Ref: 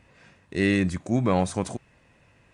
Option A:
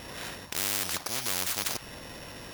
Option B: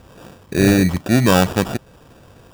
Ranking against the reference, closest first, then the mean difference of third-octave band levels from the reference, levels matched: B, A; 6.5 dB, 20.0 dB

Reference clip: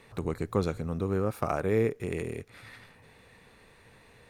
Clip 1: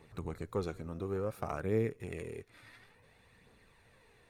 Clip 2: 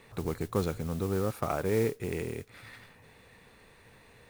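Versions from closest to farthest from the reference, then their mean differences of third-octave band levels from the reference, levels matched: 1, 2; 1.5 dB, 3.0 dB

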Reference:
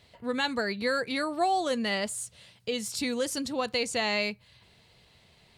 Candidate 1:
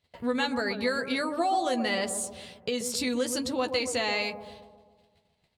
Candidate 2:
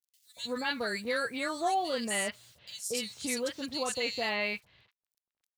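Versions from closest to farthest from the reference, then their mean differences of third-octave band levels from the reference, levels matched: 1, 2; 5.5 dB, 11.0 dB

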